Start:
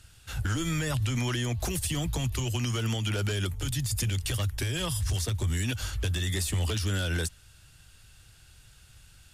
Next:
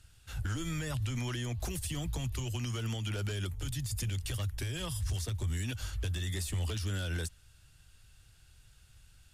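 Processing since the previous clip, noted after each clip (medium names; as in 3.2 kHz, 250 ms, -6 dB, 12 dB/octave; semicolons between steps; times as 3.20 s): bass shelf 76 Hz +6 dB; trim -7.5 dB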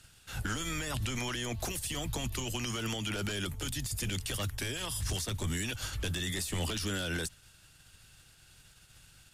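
spectral peaks clipped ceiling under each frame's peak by 14 dB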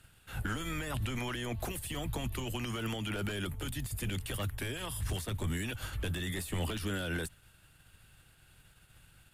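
peaking EQ 5.7 kHz -13 dB 1.1 oct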